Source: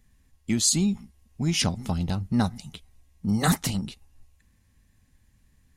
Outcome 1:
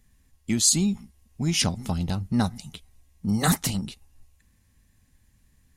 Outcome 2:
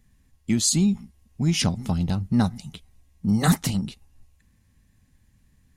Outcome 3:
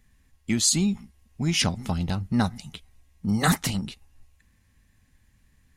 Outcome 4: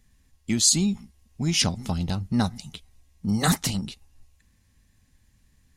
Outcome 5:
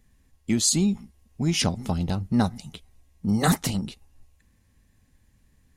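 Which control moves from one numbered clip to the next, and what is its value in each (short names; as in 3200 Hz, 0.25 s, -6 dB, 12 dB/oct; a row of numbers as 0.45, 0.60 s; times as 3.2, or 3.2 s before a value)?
bell, frequency: 14000, 160, 1900, 5100, 450 Hz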